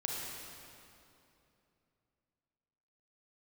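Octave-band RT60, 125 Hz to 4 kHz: 3.5 s, 3.3 s, 3.0 s, 2.7 s, 2.4 s, 2.2 s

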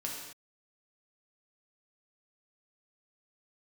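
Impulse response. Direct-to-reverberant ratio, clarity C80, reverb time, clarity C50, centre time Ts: -3.0 dB, 4.0 dB, no single decay rate, 1.5 dB, 57 ms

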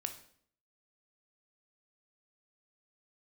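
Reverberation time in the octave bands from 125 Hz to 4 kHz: 0.65 s, 0.70 s, 0.65 s, 0.55 s, 0.55 s, 0.50 s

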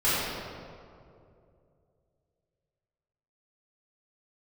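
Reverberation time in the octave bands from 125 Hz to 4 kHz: 3.2 s, 2.7 s, 2.9 s, 2.2 s, 1.6 s, 1.2 s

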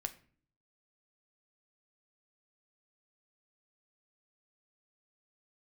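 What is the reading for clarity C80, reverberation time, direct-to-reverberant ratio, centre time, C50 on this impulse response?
20.0 dB, 0.45 s, 7.5 dB, 5 ms, 16.0 dB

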